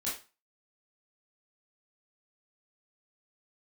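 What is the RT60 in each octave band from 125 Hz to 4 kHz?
0.30 s, 0.30 s, 0.30 s, 0.35 s, 0.30 s, 0.30 s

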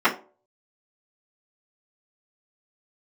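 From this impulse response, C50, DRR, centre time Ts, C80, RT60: 13.5 dB, -13.0 dB, 14 ms, 19.0 dB, 0.40 s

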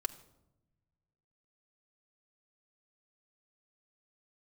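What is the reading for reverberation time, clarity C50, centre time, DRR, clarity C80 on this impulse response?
no single decay rate, 16.0 dB, 5 ms, 4.5 dB, 18.0 dB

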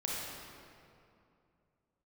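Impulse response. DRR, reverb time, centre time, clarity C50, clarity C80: -5.0 dB, 2.6 s, 145 ms, -3.0 dB, -0.5 dB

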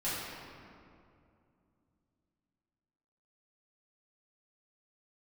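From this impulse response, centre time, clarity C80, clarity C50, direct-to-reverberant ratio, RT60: 140 ms, -0.5 dB, -2.5 dB, -12.0 dB, 2.5 s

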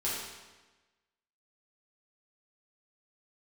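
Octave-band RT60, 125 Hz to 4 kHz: 1.2 s, 1.3 s, 1.2 s, 1.2 s, 1.2 s, 1.1 s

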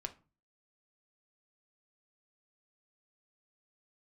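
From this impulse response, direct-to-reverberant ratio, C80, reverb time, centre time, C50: 6.0 dB, 23.0 dB, 0.35 s, 6 ms, 16.0 dB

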